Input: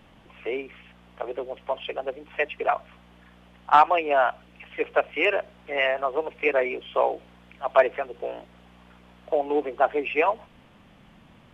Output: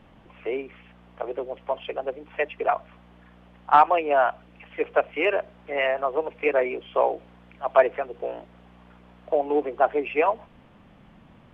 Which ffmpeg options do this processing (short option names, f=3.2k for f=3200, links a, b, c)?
-af "highshelf=f=2.8k:g=-10.5,volume=1.5dB"